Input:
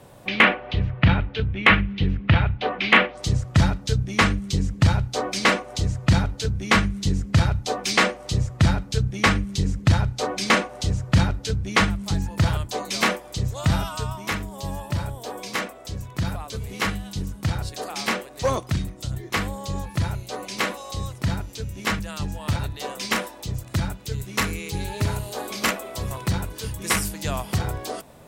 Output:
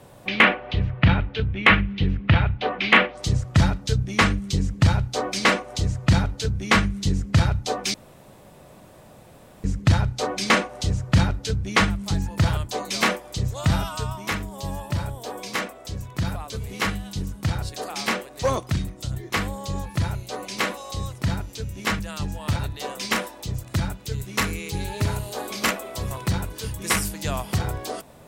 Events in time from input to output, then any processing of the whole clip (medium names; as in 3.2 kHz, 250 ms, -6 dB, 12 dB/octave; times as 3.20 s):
7.94–9.64 s: room tone